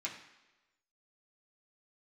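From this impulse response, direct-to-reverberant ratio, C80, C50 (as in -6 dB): -5.0 dB, 10.0 dB, 7.5 dB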